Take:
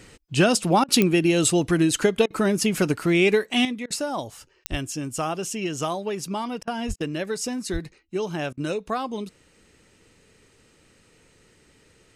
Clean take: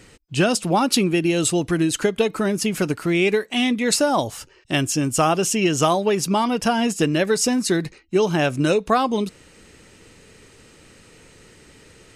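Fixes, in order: de-click; 4.70–4.82 s: high-pass 140 Hz 24 dB/octave; 6.87–6.99 s: high-pass 140 Hz 24 dB/octave; 7.72–7.84 s: high-pass 140 Hz 24 dB/octave; interpolate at 0.84/2.26/3.86/6.63/6.96/8.53 s, 43 ms; trim 0 dB, from 3.65 s +9 dB

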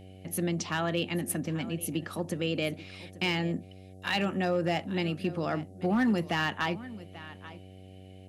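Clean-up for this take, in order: clip repair -20 dBFS; de-hum 94.3 Hz, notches 8; expander -41 dBFS, range -21 dB; inverse comb 836 ms -17.5 dB

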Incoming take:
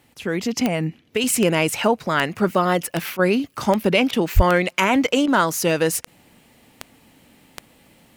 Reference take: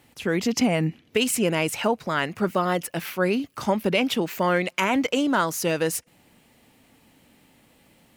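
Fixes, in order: de-click; 4.35–4.47 s: high-pass 140 Hz 24 dB/octave; interpolate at 3.17/4.11/5.26 s, 19 ms; trim 0 dB, from 1.24 s -4.5 dB

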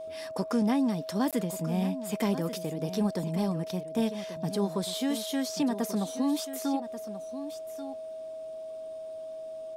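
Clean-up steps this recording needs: de-click; band-stop 640 Hz, Q 30; interpolate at 1.31 s, 17 ms; inverse comb 1136 ms -12 dB

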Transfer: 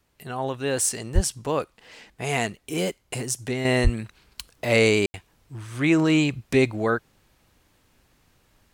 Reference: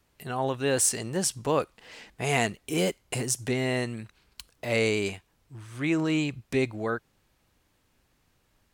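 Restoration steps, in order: 1.14–1.26 s: high-pass 140 Hz 24 dB/octave; 3.83–3.95 s: high-pass 140 Hz 24 dB/octave; room tone fill 5.06–5.14 s; trim 0 dB, from 3.65 s -6.5 dB

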